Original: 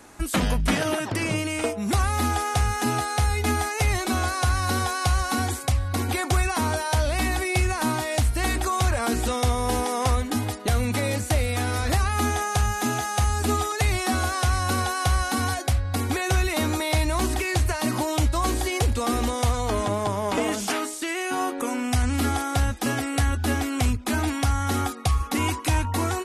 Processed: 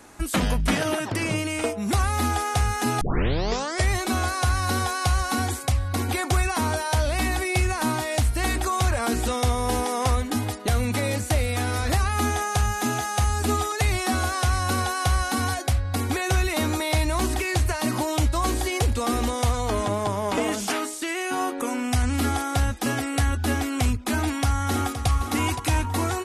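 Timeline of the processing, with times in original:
0:03.01: tape start 0.92 s
0:24.21–0:25.07: delay throw 520 ms, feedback 45%, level −9.5 dB

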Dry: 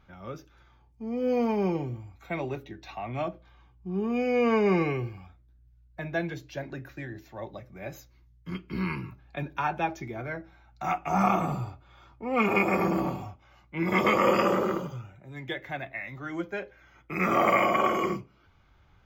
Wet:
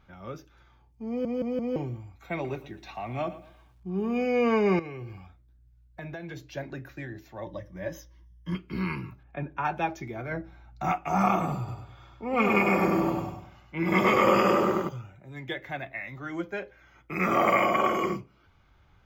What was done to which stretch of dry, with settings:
0:01.08: stutter in place 0.17 s, 4 plays
0:02.33–0:04.26: feedback echo at a low word length 115 ms, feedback 35%, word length 10 bits, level −15 dB
0:04.79–0:06.41: downward compressor 12 to 1, threshold −34 dBFS
0:07.45–0:08.55: EQ curve with evenly spaced ripples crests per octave 1.2, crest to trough 14 dB
0:09.23–0:09.65: moving average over 10 samples
0:10.31–0:10.92: low-shelf EQ 450 Hz +7.5 dB
0:11.58–0:14.89: repeating echo 100 ms, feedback 37%, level −4 dB

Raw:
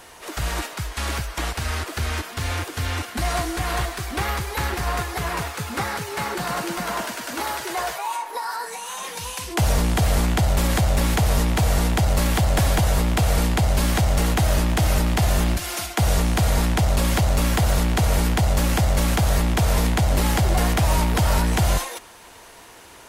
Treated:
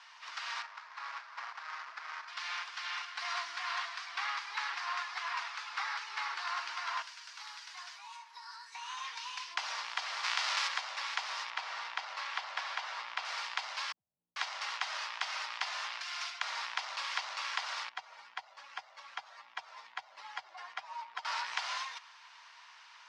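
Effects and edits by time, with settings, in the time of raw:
0:00.62–0:02.28: running median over 15 samples
0:07.02–0:08.75: first-order pre-emphasis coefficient 0.8
0:10.23–0:10.67: spectral envelope flattened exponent 0.6
0:11.50–0:13.25: low-pass filter 3,100 Hz 6 dB per octave
0:13.92–0:16.42: multiband delay without the direct sound lows, highs 440 ms, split 160 Hz
0:17.89–0:21.25: expanding power law on the bin magnitudes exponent 1.6
whole clip: Chebyshev band-pass filter 1,000–5,300 Hz, order 3; level −7 dB

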